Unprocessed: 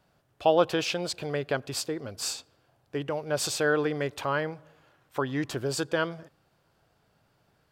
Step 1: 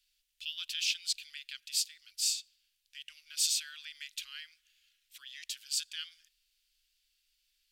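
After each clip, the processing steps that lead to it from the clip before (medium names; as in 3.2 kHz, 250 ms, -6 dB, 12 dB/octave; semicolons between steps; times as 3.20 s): inverse Chebyshev band-stop 100–900 Hz, stop band 60 dB; trim +2 dB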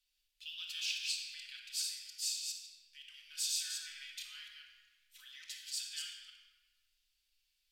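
chunks repeated in reverse 140 ms, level -4 dB; simulated room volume 1600 m³, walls mixed, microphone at 2 m; trim -8.5 dB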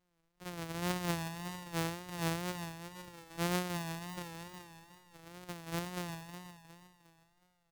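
sorted samples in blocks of 256 samples; feedback delay 361 ms, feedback 40%, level -9 dB; wow and flutter 76 cents; trim +3 dB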